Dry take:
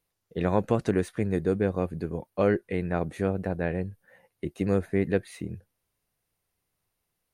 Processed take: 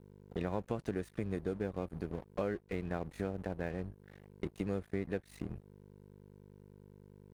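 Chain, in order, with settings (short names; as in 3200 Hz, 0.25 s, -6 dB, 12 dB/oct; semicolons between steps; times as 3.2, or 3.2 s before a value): hum 50 Hz, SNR 15 dB; crossover distortion -42 dBFS; compressor 3:1, threshold -39 dBFS, peak gain reduction 15.5 dB; gain +2 dB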